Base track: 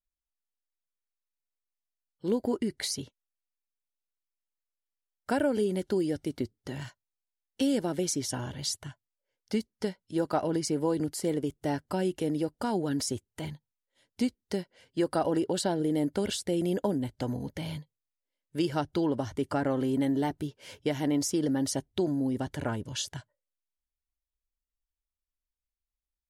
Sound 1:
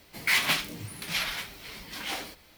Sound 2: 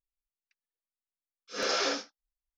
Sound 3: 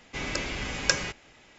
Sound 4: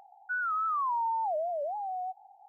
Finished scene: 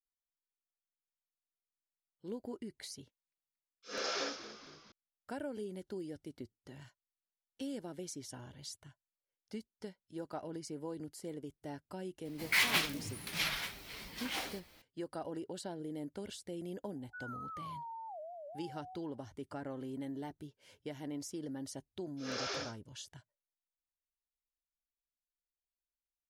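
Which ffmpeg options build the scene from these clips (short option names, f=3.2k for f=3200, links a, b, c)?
-filter_complex "[2:a]asplit=2[a][b];[0:a]volume=-14.5dB[c];[a]asplit=6[d][e][f][g][h][i];[e]adelay=230,afreqshift=-65,volume=-13dB[j];[f]adelay=460,afreqshift=-130,volume=-18.7dB[k];[g]adelay=690,afreqshift=-195,volume=-24.4dB[l];[h]adelay=920,afreqshift=-260,volume=-30dB[m];[i]adelay=1150,afreqshift=-325,volume=-35.7dB[n];[d][j][k][l][m][n]amix=inputs=6:normalize=0,atrim=end=2.57,asetpts=PTS-STARTPTS,volume=-8dB,afade=t=in:d=0.004:c=hsin,afade=t=out:st=2.566:d=0.004:c=hsin,adelay=2350[o];[1:a]atrim=end=2.57,asetpts=PTS-STARTPTS,volume=-5dB,afade=t=in:d=0.004:c=hsin,afade=t=out:st=2.566:d=0.004:c=hsin,adelay=12250[p];[4:a]atrim=end=2.48,asetpts=PTS-STARTPTS,volume=-15.5dB,afade=t=in:d=0.004:c=hsin,afade=t=out:st=2.476:d=0.004:c=hsin,adelay=742644S[q];[b]atrim=end=2.57,asetpts=PTS-STARTPTS,volume=-10dB,afade=t=in:d=0.004:c=hsin,afade=t=out:st=2.566:d=0.004:c=hsin,adelay=20690[r];[c][o][p][q][r]amix=inputs=5:normalize=0"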